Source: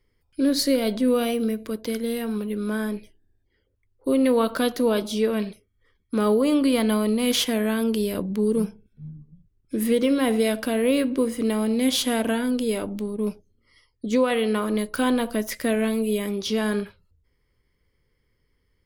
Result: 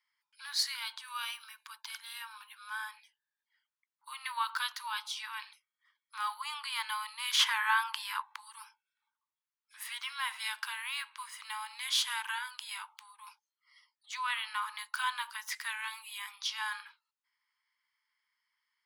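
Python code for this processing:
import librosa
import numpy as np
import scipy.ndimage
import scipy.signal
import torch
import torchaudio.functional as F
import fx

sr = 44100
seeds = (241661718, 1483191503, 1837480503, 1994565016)

y = fx.notch(x, sr, hz=2000.0, q=11.0, at=(0.85, 2.88))
y = fx.peak_eq(y, sr, hz=1100.0, db=11.5, octaves=2.2, at=(7.39, 8.36))
y = scipy.signal.sosfilt(scipy.signal.cheby1(8, 1.0, 860.0, 'highpass', fs=sr, output='sos'), y)
y = fx.peak_eq(y, sr, hz=14000.0, db=-9.0, octaves=1.0)
y = y * 10.0 ** (-3.0 / 20.0)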